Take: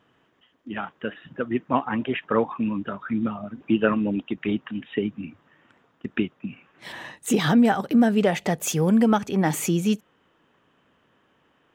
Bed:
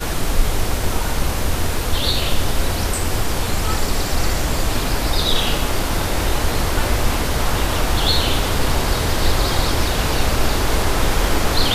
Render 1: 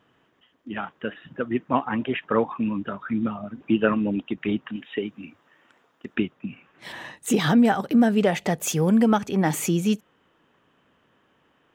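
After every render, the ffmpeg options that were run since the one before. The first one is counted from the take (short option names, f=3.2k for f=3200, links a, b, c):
-filter_complex "[0:a]asettb=1/sr,asplit=3[a][b][c];[a]atrim=end=4.764[d];[b]atrim=start=4.76:end=6.15,asetpts=PTS-STARTPTS,afade=t=in:d=0.004:c=qsin,afade=t=out:st=1.386:d=0.004:c=qsin,bass=f=250:g=-10,treble=f=4k:g=5[e];[c]atrim=start=6.146[f];[d][e]acrossfade=d=0.004:c1=hsin:c2=qsin[g];[g][f]acrossfade=d=0.004:c1=qsin:c2=hsin"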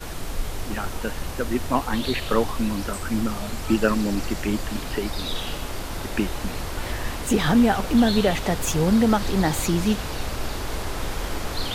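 -filter_complex "[1:a]volume=-11dB[a];[0:a][a]amix=inputs=2:normalize=0"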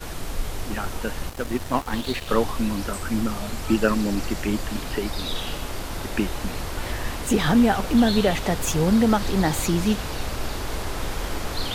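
-filter_complex "[0:a]asettb=1/sr,asplit=3[a][b][c];[a]atrim=end=1.294[d];[b]atrim=start=1.29:end=2.29,asetpts=PTS-STARTPTS,afade=t=in:d=0.004:c=qsin,afade=t=out:st=0.996:d=0.004:c=qsin,aeval=exprs='sgn(val(0))*max(abs(val(0))-0.0211,0)':c=same[e];[c]atrim=start=2.286[f];[d][e]acrossfade=d=0.004:c1=hsin:c2=qsin[g];[g][f]acrossfade=d=0.004:c1=qsin:c2=hsin"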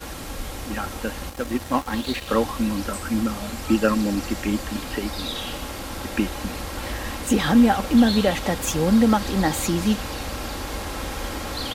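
-af "highpass=46,aecho=1:1:3.7:0.41"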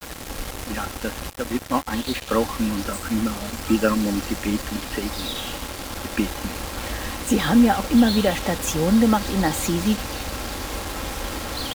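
-af "acrusher=bits=4:mix=0:aa=0.5"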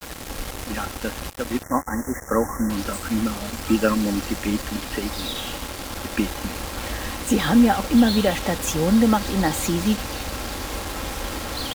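-filter_complex "[0:a]asettb=1/sr,asplit=3[a][b][c];[a]atrim=end=1.634[d];[b]atrim=start=1.63:end=2.7,asetpts=PTS-STARTPTS,afade=t=in:d=0.004:c=qsin,afade=t=out:st=1.066:d=0.004:c=qsin,asuperstop=centerf=3400:order=20:qfactor=0.98[e];[c]atrim=start=2.696[f];[d][e]acrossfade=d=0.004:c1=hsin:c2=qsin[g];[g][f]acrossfade=d=0.004:c1=qsin:c2=hsin"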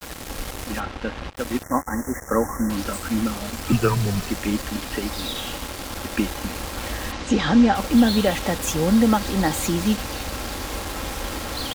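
-filter_complex "[0:a]asplit=3[a][b][c];[a]afade=t=out:st=0.79:d=0.02[d];[b]lowpass=3.4k,afade=t=in:st=0.79:d=0.02,afade=t=out:st=1.35:d=0.02[e];[c]afade=t=in:st=1.35:d=0.02[f];[d][e][f]amix=inputs=3:normalize=0,asettb=1/sr,asplit=3[g][h][i];[g]atrim=end=3.724[j];[h]atrim=start=3.72:end=4.3,asetpts=PTS-STARTPTS,afade=t=in:d=0.004:c=qsin,afade=t=out:st=0.576:d=0.004:c=qsin,afreqshift=-100[k];[i]atrim=start=4.296[l];[j][k]acrossfade=d=0.004:c1=hsin:c2=qsin[m];[m][l]acrossfade=d=0.004:c1=qsin:c2=hsin,asplit=3[n][o][p];[n]afade=t=out:st=7.11:d=0.02[q];[o]lowpass=f=6.4k:w=0.5412,lowpass=f=6.4k:w=1.3066,afade=t=in:st=7.11:d=0.02,afade=t=out:st=7.74:d=0.02[r];[p]afade=t=in:st=7.74:d=0.02[s];[q][r][s]amix=inputs=3:normalize=0"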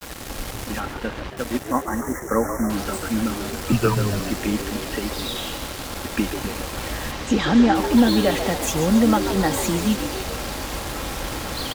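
-filter_complex "[0:a]asplit=8[a][b][c][d][e][f][g][h];[b]adelay=139,afreqshift=83,volume=-10dB[i];[c]adelay=278,afreqshift=166,volume=-14.4dB[j];[d]adelay=417,afreqshift=249,volume=-18.9dB[k];[e]adelay=556,afreqshift=332,volume=-23.3dB[l];[f]adelay=695,afreqshift=415,volume=-27.7dB[m];[g]adelay=834,afreqshift=498,volume=-32.2dB[n];[h]adelay=973,afreqshift=581,volume=-36.6dB[o];[a][i][j][k][l][m][n][o]amix=inputs=8:normalize=0"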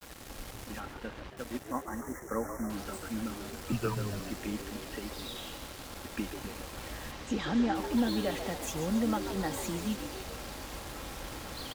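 -af "volume=-13dB"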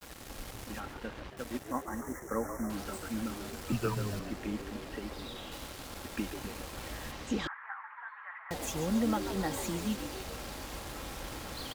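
-filter_complex "[0:a]asettb=1/sr,asplit=3[a][b][c];[a]atrim=end=4.194[d];[b]atrim=start=4.19:end=5.52,asetpts=PTS-STARTPTS,afade=t=in:d=0.004:c=qsin,afade=t=out:st=1.326:d=0.004:c=qsin,highshelf=f=4k:g=-8.5[e];[c]atrim=start=5.516[f];[d][e]acrossfade=d=0.004:c1=hsin:c2=qsin[g];[g][f]acrossfade=d=0.004:c1=qsin:c2=hsin,asettb=1/sr,asplit=3[h][i][j];[h]atrim=end=7.474[k];[i]atrim=start=7.47:end=8.51,asetpts=PTS-STARTPTS,afade=t=in:d=0.004:c=qsin,afade=t=out:st=1.036:d=0.004:c=qsin,asuperpass=centerf=1400:order=8:qfactor=1.3[l];[j]atrim=start=8.506[m];[k][l]acrossfade=d=0.004:c1=hsin:c2=qsin[n];[n][m]acrossfade=d=0.004:c1=qsin:c2=hsin"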